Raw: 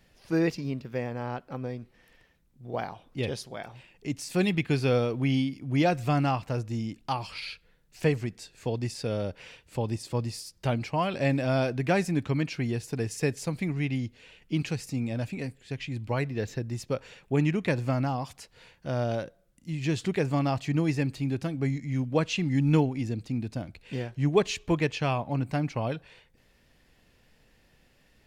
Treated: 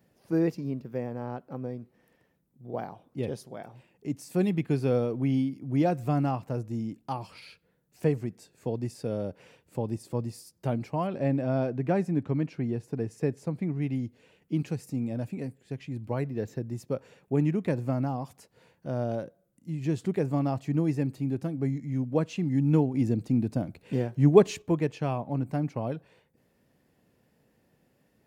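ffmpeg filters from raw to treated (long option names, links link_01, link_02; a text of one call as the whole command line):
ffmpeg -i in.wav -filter_complex "[0:a]asettb=1/sr,asplit=3[link_01][link_02][link_03];[link_01]atrim=end=11.074[link_04];[link_02]atrim=start=11.07:end=13.82,asetpts=PTS-STARTPTS,afade=type=in:duration=0.004:curve=qsin,afade=type=out:start_time=2.746:duration=0.004:curve=qsin,aemphasis=mode=reproduction:type=50kf[link_05];[link_03]atrim=start=13.816[link_06];[link_04][link_05]acrossfade=duration=0.004:curve1=hsin:curve2=qsin[link_07];[link_07][link_06]acrossfade=duration=0.004:curve1=qsin:curve2=hsin,asplit=3[link_08][link_09][link_10];[link_08]atrim=end=22.942[link_11];[link_09]atrim=start=22.938:end=24.622,asetpts=PTS-STARTPTS,volume=6dB[link_12];[link_10]atrim=start=24.618[link_13];[link_11][link_12]acrossfade=duration=0.004:curve1=hsin:curve2=hsin[link_14];[link_14][link_13]acrossfade=duration=0.004:curve1=hsin:curve2=hsin,highpass=130,equalizer=frequency=3400:width=0.37:gain=-14,volume=1.5dB" out.wav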